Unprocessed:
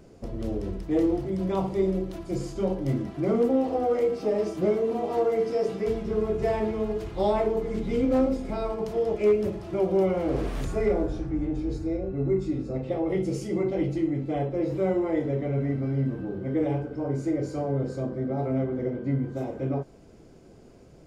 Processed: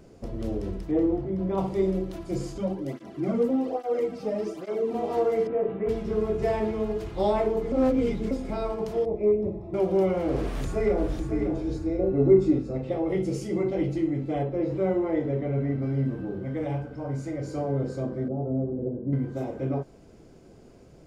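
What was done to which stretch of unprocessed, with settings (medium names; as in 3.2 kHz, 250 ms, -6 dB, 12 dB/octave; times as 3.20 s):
0.91–1.58 s: low-pass 1.2 kHz 6 dB/octave
2.58–4.94 s: cancelling through-zero flanger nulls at 1.2 Hz, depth 3.1 ms
5.47–5.89 s: Bessel low-pass 1.7 kHz, order 8
7.72–8.31 s: reverse
9.05–9.74 s: boxcar filter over 29 samples
10.42–11.35 s: echo throw 550 ms, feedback 10%, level -7.5 dB
11.99–12.59 s: peaking EQ 470 Hz +8.5 dB 2.6 oct
14.43–15.82 s: treble shelf 5.7 kHz -11.5 dB
16.45–17.48 s: peaking EQ 370 Hz -11.5 dB 0.59 oct
18.28–19.13 s: Bessel low-pass 530 Hz, order 4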